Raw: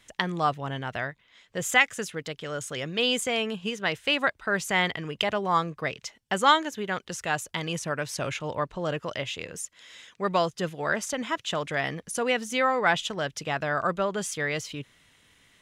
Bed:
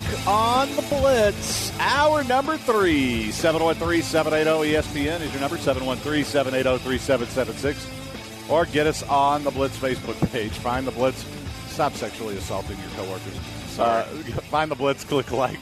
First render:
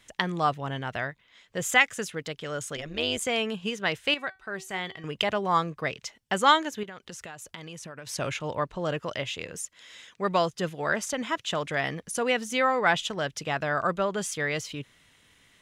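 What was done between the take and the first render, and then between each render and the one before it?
2.76–3.21 s: AM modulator 150 Hz, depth 70%; 4.14–5.04 s: feedback comb 380 Hz, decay 0.22 s, mix 70%; 6.83–8.07 s: compression 12:1, threshold -37 dBFS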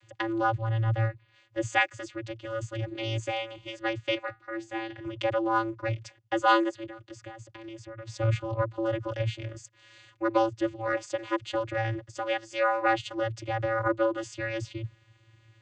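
vocoder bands 16, square 112 Hz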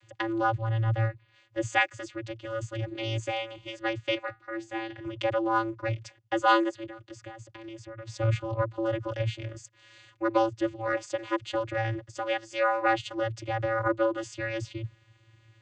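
no audible change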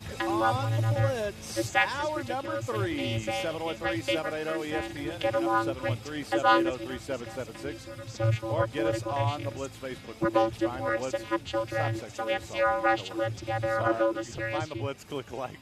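add bed -13 dB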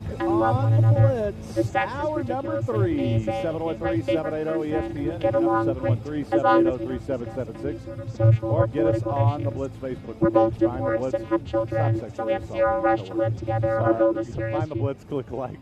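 tilt shelf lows +9.5 dB, about 1.2 kHz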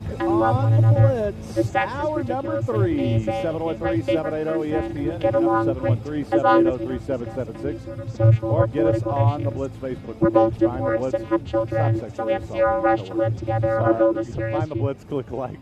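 trim +2 dB

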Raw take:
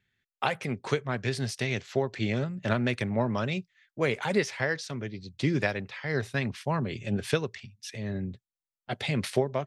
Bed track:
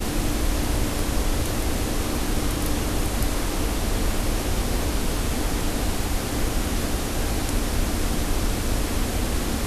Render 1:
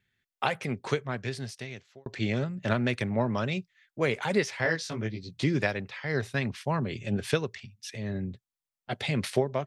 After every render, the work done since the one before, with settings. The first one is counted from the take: 0.85–2.06 s: fade out; 4.63–5.44 s: doubling 18 ms -2 dB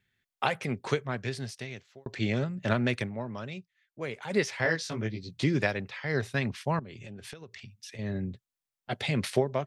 2.99–4.40 s: dip -9 dB, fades 0.13 s; 6.79–7.99 s: compression 16:1, threshold -40 dBFS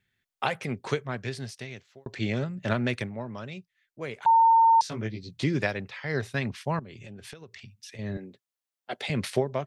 4.26–4.81 s: bleep 909 Hz -15 dBFS; 8.17–9.10 s: Chebyshev high-pass 360 Hz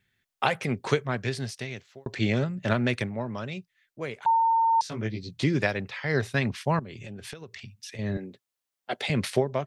gain riding within 4 dB 0.5 s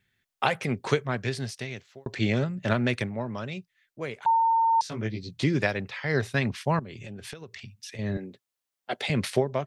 no audible change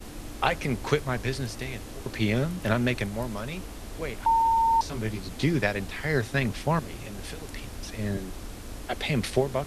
add bed track -15.5 dB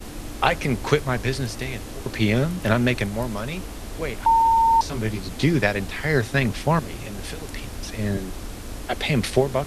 trim +5 dB

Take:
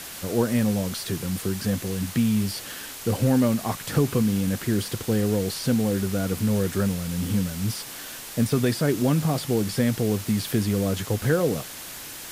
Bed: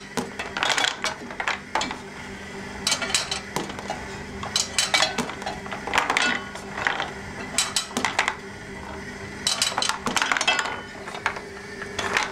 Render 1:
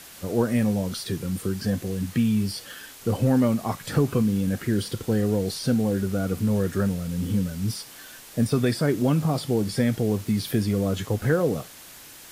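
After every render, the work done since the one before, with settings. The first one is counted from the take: noise print and reduce 7 dB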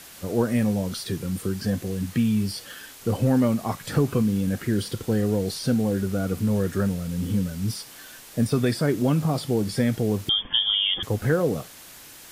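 10.29–11.03 s: frequency inversion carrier 3.4 kHz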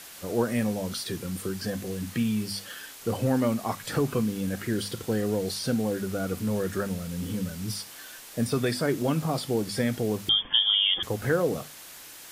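bass shelf 300 Hz -6.5 dB; hum notches 50/100/150/200/250 Hz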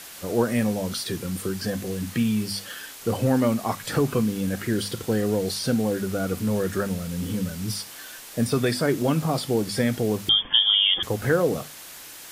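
trim +3.5 dB

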